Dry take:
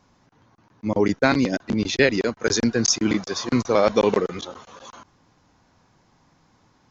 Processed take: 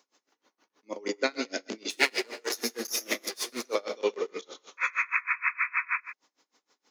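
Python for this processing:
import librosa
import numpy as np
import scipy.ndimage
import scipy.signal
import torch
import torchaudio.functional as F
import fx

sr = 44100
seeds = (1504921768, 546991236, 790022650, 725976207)

y = fx.lower_of_two(x, sr, delay_ms=8.4, at=(1.89, 3.62), fade=0.02)
y = fx.rider(y, sr, range_db=10, speed_s=0.5)
y = scipy.signal.sosfilt(scipy.signal.butter(4, 350.0, 'highpass', fs=sr, output='sos'), y)
y = fx.high_shelf(y, sr, hz=5200.0, db=6.0)
y = fx.rev_gated(y, sr, seeds[0], gate_ms=370, shape='falling', drr_db=8.0)
y = fx.spec_paint(y, sr, seeds[1], shape='noise', start_s=4.77, length_s=1.24, low_hz=950.0, high_hz=2600.0, level_db=-21.0)
y = fx.peak_eq(y, sr, hz=820.0, db=-8.0, octaves=1.5)
y = fx.notch(y, sr, hz=1600.0, q=17.0)
y = y + 10.0 ** (-12.5 / 20.0) * np.pad(y, (int(123 * sr / 1000.0), 0))[:len(y)]
y = y * 10.0 ** (-28 * (0.5 - 0.5 * np.cos(2.0 * np.pi * 6.4 * np.arange(len(y)) / sr)) / 20.0)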